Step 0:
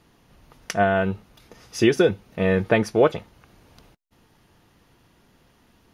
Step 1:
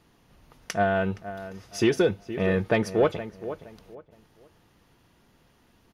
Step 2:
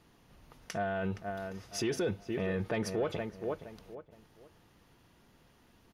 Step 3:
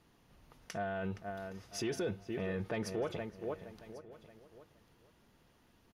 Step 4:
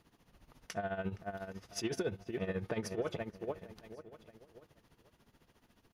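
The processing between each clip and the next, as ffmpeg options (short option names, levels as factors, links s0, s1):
-filter_complex "[0:a]asplit=2[s0][s1];[s1]adelay=469,lowpass=f=1900:p=1,volume=0.211,asplit=2[s2][s3];[s3]adelay=469,lowpass=f=1900:p=1,volume=0.28,asplit=2[s4][s5];[s5]adelay=469,lowpass=f=1900:p=1,volume=0.28[s6];[s0][s2][s4][s6]amix=inputs=4:normalize=0,asoftclip=type=tanh:threshold=0.422,volume=0.708"
-af "alimiter=limit=0.075:level=0:latency=1:release=50,volume=0.794"
-af "aecho=1:1:1095:0.119,volume=0.631"
-af "tremolo=f=14:d=0.75,volume=1.41"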